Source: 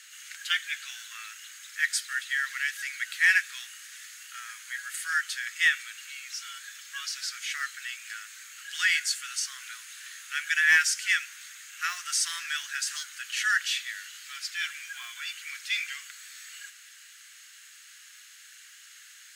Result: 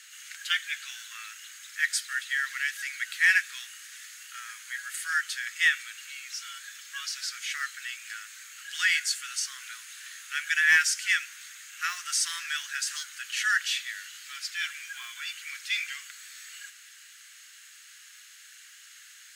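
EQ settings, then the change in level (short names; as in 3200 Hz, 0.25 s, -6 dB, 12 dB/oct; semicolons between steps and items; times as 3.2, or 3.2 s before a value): bell 640 Hz -11 dB 0.21 oct; 0.0 dB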